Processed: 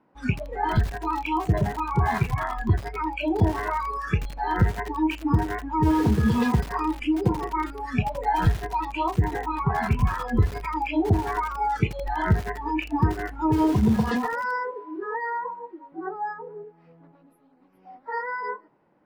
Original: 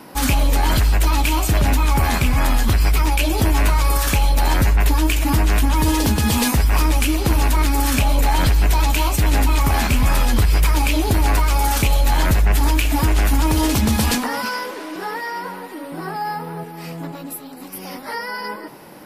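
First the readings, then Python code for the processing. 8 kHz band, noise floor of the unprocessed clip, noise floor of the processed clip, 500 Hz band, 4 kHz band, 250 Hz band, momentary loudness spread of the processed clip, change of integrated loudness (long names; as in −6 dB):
−24.0 dB, −35 dBFS, −59 dBFS, −3.5 dB, −17.5 dB, −3.0 dB, 10 LU, −7.5 dB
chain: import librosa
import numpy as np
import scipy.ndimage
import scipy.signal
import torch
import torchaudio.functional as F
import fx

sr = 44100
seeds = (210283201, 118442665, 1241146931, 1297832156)

y = scipy.signal.sosfilt(scipy.signal.butter(2, 1700.0, 'lowpass', fs=sr, output='sos'), x)
y = fx.noise_reduce_blind(y, sr, reduce_db=23)
y = fx.echo_crushed(y, sr, ms=82, feedback_pct=80, bits=4, wet_db=-14)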